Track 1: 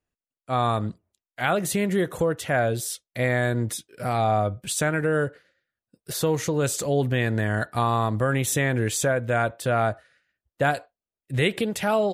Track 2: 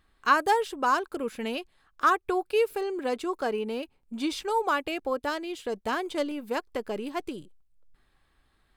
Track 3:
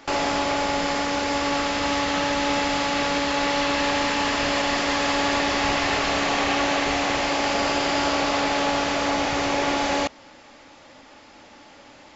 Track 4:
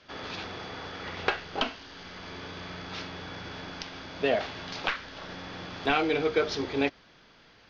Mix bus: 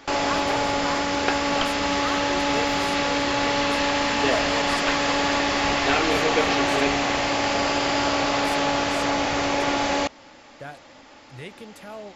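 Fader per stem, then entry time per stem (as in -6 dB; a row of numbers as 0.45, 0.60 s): -16.5, -9.0, 0.0, +1.0 dB; 0.00, 0.00, 0.00, 0.00 s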